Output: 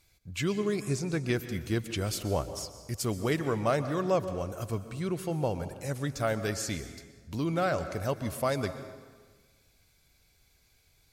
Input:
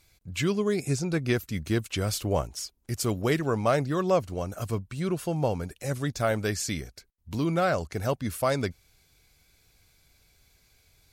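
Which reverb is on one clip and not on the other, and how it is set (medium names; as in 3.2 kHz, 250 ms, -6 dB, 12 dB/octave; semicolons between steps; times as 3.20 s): plate-style reverb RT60 1.5 s, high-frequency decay 0.7×, pre-delay 110 ms, DRR 11 dB; trim -3.5 dB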